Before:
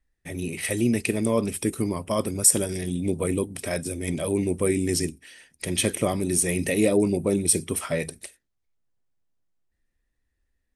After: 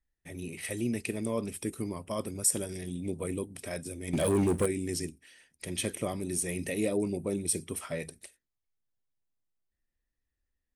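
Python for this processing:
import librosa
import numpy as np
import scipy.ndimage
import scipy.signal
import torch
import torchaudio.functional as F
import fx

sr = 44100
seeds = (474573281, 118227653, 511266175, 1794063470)

y = fx.leveller(x, sr, passes=3, at=(4.13, 4.66))
y = F.gain(torch.from_numpy(y), -9.0).numpy()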